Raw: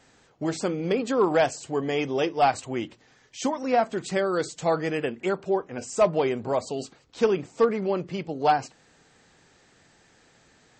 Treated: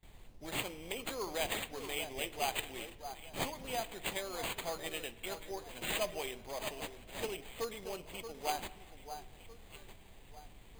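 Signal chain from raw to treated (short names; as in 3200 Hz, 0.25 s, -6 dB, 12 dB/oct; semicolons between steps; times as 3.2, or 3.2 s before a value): pre-emphasis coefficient 0.97; added noise brown -59 dBFS; gate with hold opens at -53 dBFS; on a send: echo with dull and thin repeats by turns 0.628 s, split 1600 Hz, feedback 55%, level -9 dB; on the sum: careless resampling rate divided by 8×, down none, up hold; bell 1400 Hz -9 dB 0.77 oct; spring tank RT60 1.5 s, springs 44/54 ms, chirp 50 ms, DRR 17 dB; gain +4.5 dB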